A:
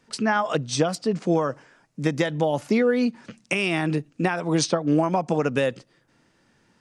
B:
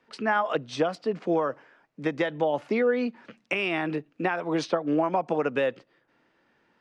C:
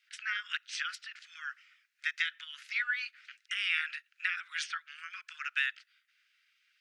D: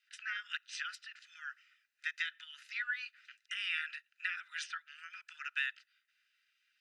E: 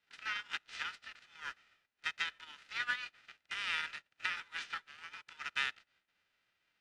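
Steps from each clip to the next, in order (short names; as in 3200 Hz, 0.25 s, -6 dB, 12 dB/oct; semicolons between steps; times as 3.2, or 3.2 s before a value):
three-band isolator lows -12 dB, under 270 Hz, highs -20 dB, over 3700 Hz; gain -1.5 dB
spectral gate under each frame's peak -10 dB weak; steep high-pass 1400 Hz 72 dB/oct; gain +4 dB
notch comb 1100 Hz; gain -4 dB
spectral whitening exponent 0.3; LPF 3100 Hz 12 dB/oct; gain +2.5 dB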